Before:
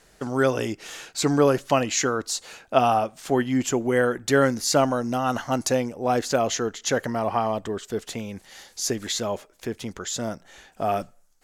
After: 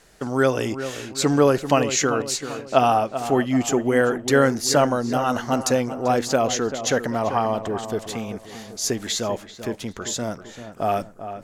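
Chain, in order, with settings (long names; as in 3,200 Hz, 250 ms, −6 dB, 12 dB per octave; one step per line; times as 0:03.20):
feedback echo with a low-pass in the loop 390 ms, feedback 49%, low-pass 2,100 Hz, level −10.5 dB
level +2 dB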